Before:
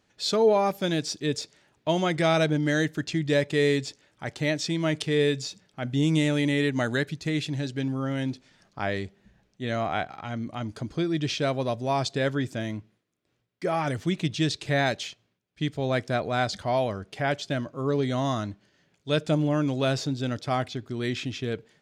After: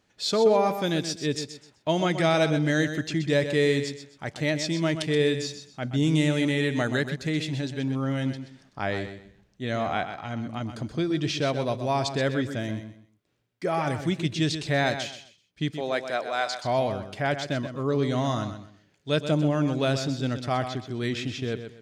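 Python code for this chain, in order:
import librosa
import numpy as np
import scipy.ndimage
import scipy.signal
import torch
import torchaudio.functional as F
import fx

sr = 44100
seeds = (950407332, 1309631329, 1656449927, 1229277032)

p1 = fx.highpass(x, sr, hz=fx.line((15.71, 290.0), (16.63, 720.0)), slope=12, at=(15.71, 16.63), fade=0.02)
y = p1 + fx.echo_feedback(p1, sr, ms=127, feedback_pct=26, wet_db=-9.5, dry=0)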